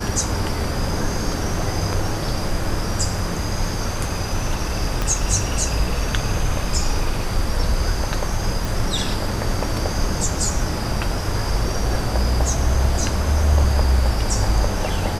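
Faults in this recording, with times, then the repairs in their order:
5.02 pop -8 dBFS
8.65 pop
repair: de-click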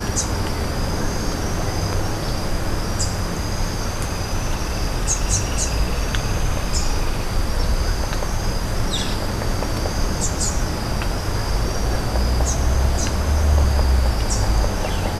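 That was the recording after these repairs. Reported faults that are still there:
5.02 pop

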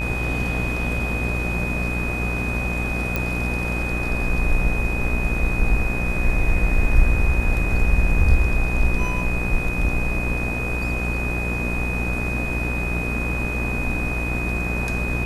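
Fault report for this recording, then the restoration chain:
buzz 60 Hz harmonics 36 -26 dBFS
tone 2500 Hz -27 dBFS
3.16 pop -9 dBFS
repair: de-click; notch 2500 Hz, Q 30; de-hum 60 Hz, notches 36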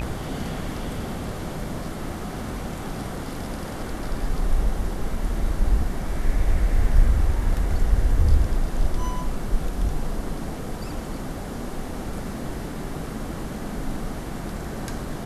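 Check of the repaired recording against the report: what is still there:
none

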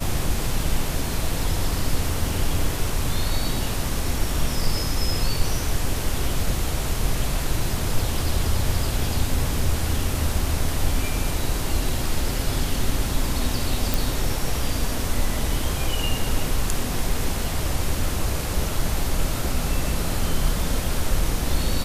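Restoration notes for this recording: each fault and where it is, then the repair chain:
13.94 pop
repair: de-click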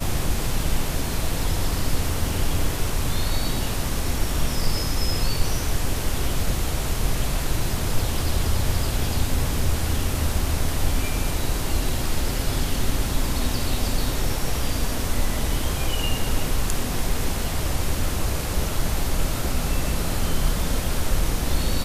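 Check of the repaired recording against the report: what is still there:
none

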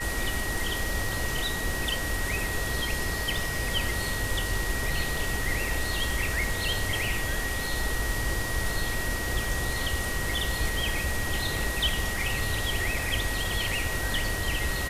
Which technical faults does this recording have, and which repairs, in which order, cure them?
crackle 21/s -35 dBFS
tone 1900 Hz -33 dBFS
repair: de-click; notch 1900 Hz, Q 30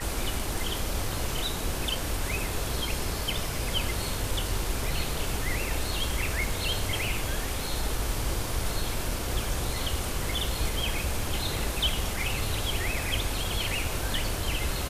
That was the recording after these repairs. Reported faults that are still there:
none

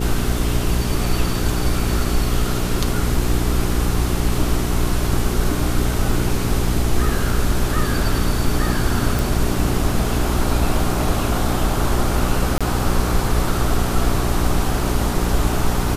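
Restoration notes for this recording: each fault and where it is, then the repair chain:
hum 60 Hz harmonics 7 -23 dBFS
9.19 pop
12.58–12.61 gap 26 ms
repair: de-click; de-hum 60 Hz, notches 7; interpolate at 12.58, 26 ms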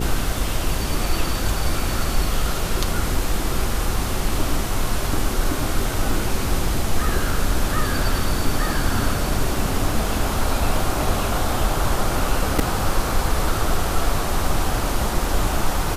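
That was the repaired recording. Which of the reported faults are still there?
none

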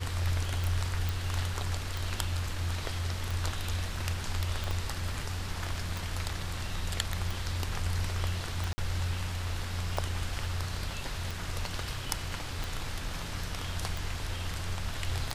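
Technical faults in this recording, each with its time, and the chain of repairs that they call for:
tick 45 rpm
1.09 pop
4.71 pop
8.73–8.78 gap 50 ms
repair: de-click; interpolate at 8.73, 50 ms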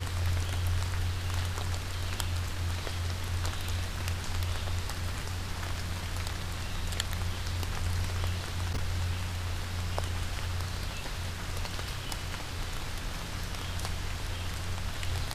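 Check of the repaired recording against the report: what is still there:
4.71 pop

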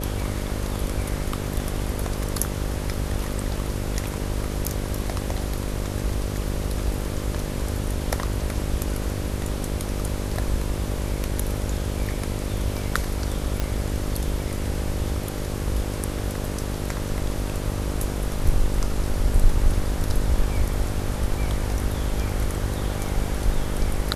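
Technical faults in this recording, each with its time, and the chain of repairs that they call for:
buzz 50 Hz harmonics 12 -29 dBFS
13.6 pop -11 dBFS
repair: de-click; de-hum 50 Hz, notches 12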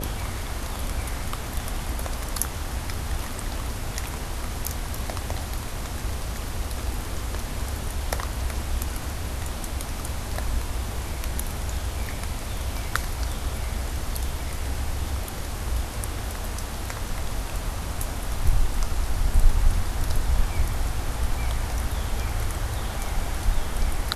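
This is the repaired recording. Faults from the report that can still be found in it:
none

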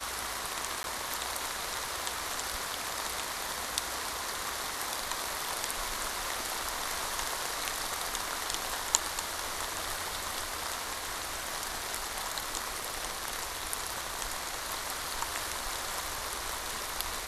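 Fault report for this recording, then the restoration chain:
crackle 31/s -42 dBFS
0.83–0.84 gap 11 ms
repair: de-click; interpolate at 0.83, 11 ms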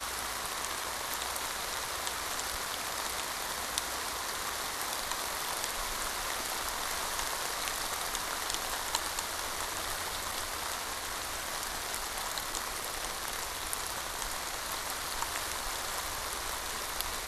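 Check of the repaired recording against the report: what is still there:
none

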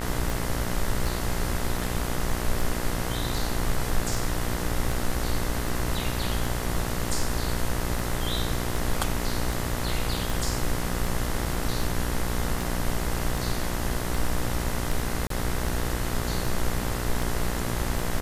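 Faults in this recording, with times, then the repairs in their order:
buzz 60 Hz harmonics 35 -31 dBFS
tick 78 rpm
15.27–15.3 gap 33 ms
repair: de-click; de-hum 60 Hz, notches 35; interpolate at 15.27, 33 ms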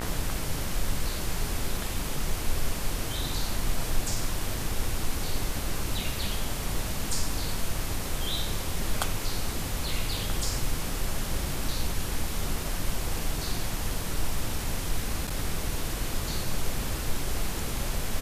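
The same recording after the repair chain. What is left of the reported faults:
none

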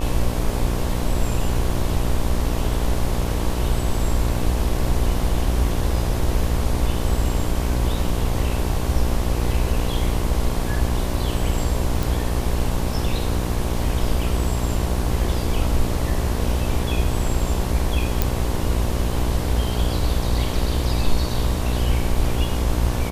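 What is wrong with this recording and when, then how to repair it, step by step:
buzz 60 Hz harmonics 19 -25 dBFS
12.03 pop
18.22 pop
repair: de-click; de-hum 60 Hz, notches 19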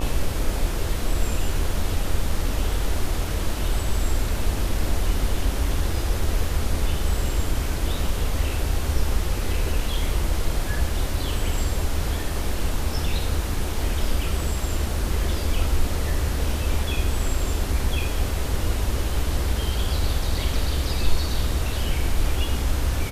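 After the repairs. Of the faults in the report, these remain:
none

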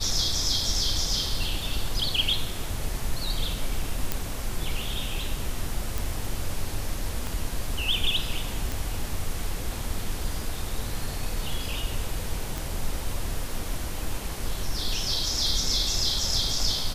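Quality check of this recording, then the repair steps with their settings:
4.12 pop
5.98 pop
7.27 pop
8.72 pop
12.58 pop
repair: de-click

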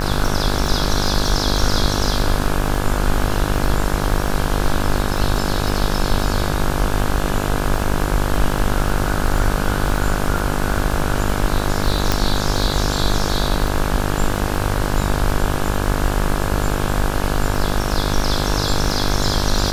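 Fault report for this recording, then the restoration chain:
buzz 50 Hz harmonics 34 -22 dBFS
crackle 41/s -24 dBFS
12.12 pop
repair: de-click; de-hum 50 Hz, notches 34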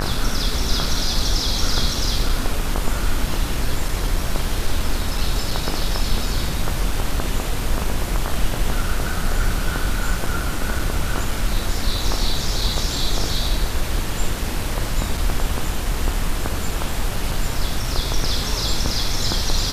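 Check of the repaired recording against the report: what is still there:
12.12 pop

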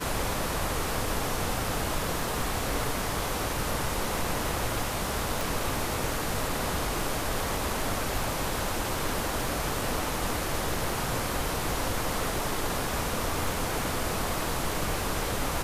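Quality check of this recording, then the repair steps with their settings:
crackle 53/s -37 dBFS
5.41 pop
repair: de-click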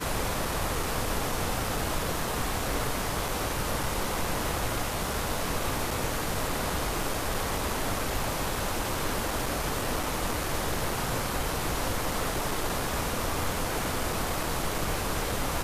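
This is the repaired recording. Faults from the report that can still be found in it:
5.41 pop

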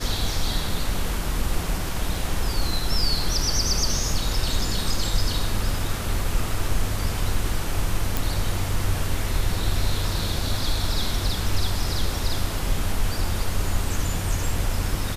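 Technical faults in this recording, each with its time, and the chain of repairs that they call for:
8.17 pop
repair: de-click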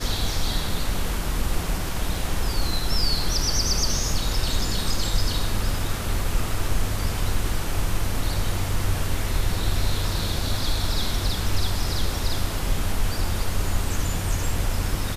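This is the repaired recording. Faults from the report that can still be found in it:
none

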